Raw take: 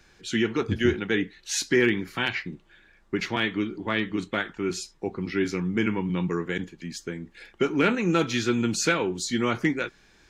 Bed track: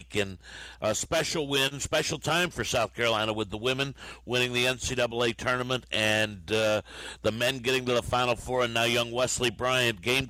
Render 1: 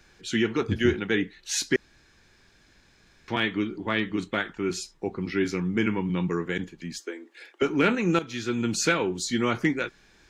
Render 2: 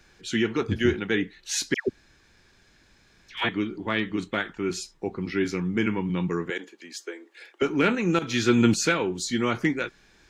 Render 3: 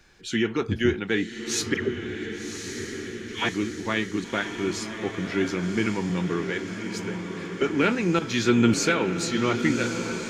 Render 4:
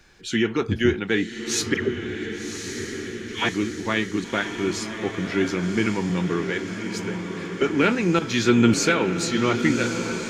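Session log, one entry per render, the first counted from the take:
1.76–3.28 s: room tone; 6.99–7.62 s: steep high-pass 290 Hz 48 dB/octave; 8.19–8.78 s: fade in, from -13.5 dB
1.74–3.49 s: phase dispersion lows, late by 141 ms, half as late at 1.1 kHz; 6.50–7.53 s: high-pass 330 Hz 24 dB/octave; 8.22–8.74 s: gain +8 dB
echo that smears into a reverb 1121 ms, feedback 61%, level -7 dB
trim +2.5 dB

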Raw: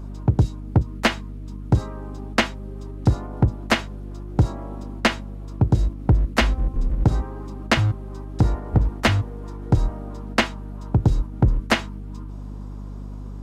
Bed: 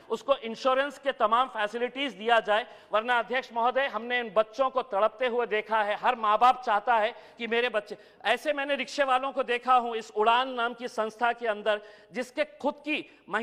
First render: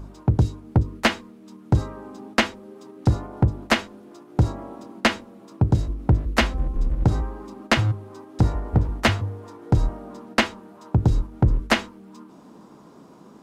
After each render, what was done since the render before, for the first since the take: de-hum 50 Hz, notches 10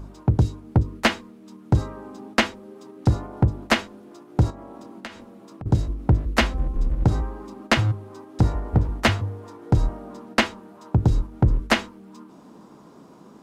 4.50–5.66 s: compression 5:1, threshold -36 dBFS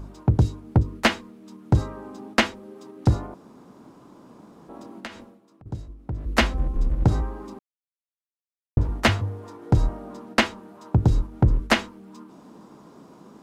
3.34–4.69 s: room tone; 5.19–6.35 s: dip -13.5 dB, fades 0.22 s; 7.59–8.77 s: mute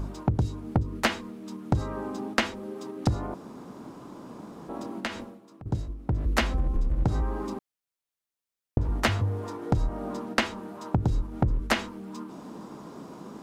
in parallel at -1.5 dB: peak limiter -20 dBFS, peak gain reduction 11 dB; on the sum: compression 5:1, threshold -22 dBFS, peak gain reduction 10.5 dB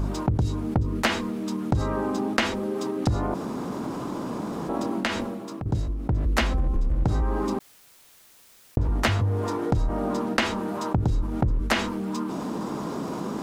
level flattener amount 50%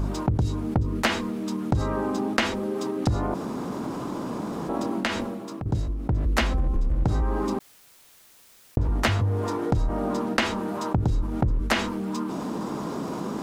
no audible change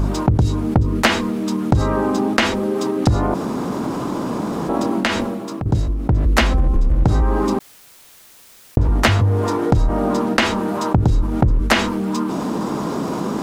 trim +8 dB; peak limiter -1 dBFS, peak gain reduction 2 dB

